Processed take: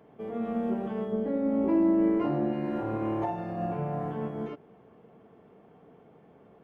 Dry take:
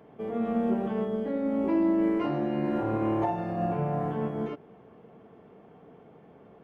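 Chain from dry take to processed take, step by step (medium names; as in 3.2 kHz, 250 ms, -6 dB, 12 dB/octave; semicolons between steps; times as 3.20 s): 1.12–2.53 s: tilt shelf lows +4.5 dB, about 1.5 kHz; trim -3 dB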